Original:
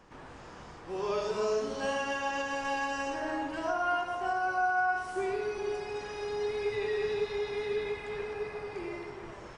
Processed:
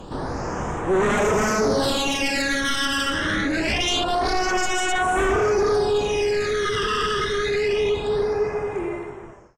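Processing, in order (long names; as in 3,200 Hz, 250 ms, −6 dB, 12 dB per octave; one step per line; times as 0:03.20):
fade-out on the ending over 2.32 s
sine wavefolder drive 14 dB, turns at −19.5 dBFS
all-pass phaser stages 12, 0.25 Hz, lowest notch 730–4,600 Hz
level +3 dB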